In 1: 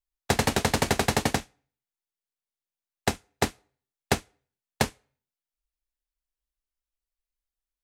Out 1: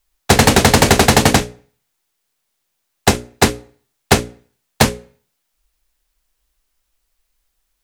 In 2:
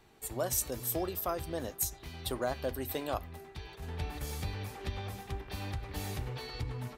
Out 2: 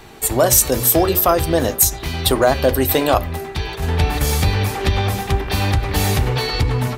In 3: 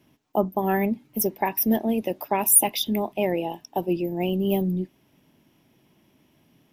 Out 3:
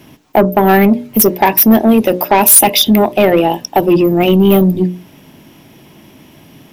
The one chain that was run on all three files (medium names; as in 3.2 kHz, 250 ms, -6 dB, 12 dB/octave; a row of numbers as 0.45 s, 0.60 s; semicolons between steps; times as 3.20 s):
hum notches 60/120/180/240/300/360/420/480/540/600 Hz; in parallel at -2.5 dB: compression, threshold -32 dBFS; on the sum: saturation -18 dBFS; peak normalisation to -2 dBFS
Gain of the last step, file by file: +16.0 dB, +16.5 dB, +16.0 dB